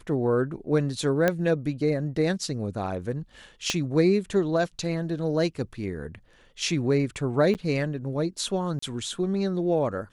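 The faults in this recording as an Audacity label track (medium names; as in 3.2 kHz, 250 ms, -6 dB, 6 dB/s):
1.280000	1.280000	pop -9 dBFS
3.700000	3.700000	pop -11 dBFS
7.540000	7.550000	dropout 9 ms
8.790000	8.820000	dropout 34 ms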